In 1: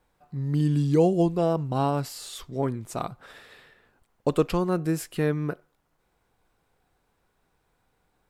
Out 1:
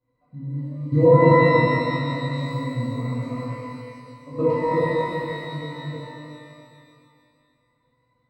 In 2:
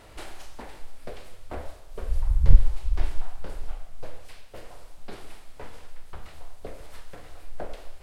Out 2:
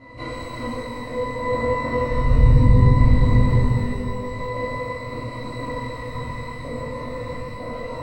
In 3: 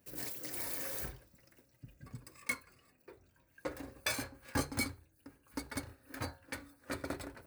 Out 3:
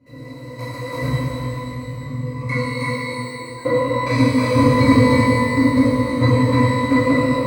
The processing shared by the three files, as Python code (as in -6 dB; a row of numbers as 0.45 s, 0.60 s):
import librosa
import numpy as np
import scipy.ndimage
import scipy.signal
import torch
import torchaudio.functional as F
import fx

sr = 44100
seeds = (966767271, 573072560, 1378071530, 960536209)

y = fx.echo_feedback(x, sr, ms=316, feedback_pct=36, wet_db=-3.0)
y = fx.level_steps(y, sr, step_db=19)
y = fx.octave_resonator(y, sr, note='B', decay_s=0.1)
y = fx.rev_shimmer(y, sr, seeds[0], rt60_s=2.0, semitones=12, shimmer_db=-8, drr_db=-10.0)
y = y * 10.0 ** (-2 / 20.0) / np.max(np.abs(y))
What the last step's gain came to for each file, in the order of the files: +7.0 dB, +20.0 dB, +28.0 dB